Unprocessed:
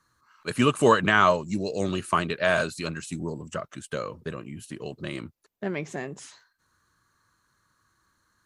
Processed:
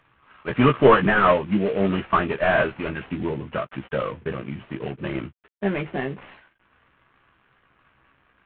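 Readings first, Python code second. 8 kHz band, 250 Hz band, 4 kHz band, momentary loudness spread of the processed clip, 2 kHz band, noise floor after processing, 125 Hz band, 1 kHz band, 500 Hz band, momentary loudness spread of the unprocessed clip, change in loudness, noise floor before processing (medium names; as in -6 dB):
under -40 dB, +5.0 dB, -2.0 dB, 17 LU, +2.0 dB, -65 dBFS, +5.0 dB, +3.0 dB, +5.0 dB, 19 LU, +3.5 dB, -71 dBFS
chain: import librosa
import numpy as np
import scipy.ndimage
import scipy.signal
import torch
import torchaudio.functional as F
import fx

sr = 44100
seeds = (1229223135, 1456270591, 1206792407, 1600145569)

y = fx.cvsd(x, sr, bps=16000)
y = fx.doubler(y, sr, ms=15.0, db=-5.0)
y = F.gain(torch.from_numpy(y), 5.5).numpy()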